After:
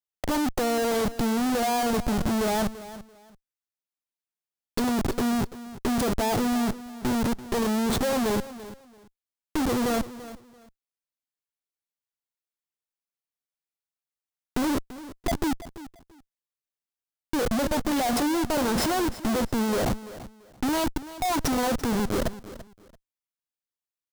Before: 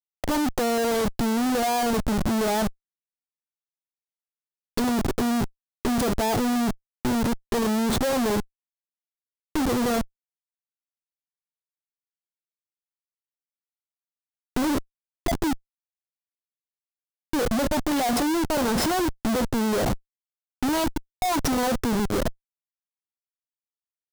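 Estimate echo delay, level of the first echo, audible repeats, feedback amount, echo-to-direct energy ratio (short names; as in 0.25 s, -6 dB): 0.338 s, -15.5 dB, 2, 22%, -15.5 dB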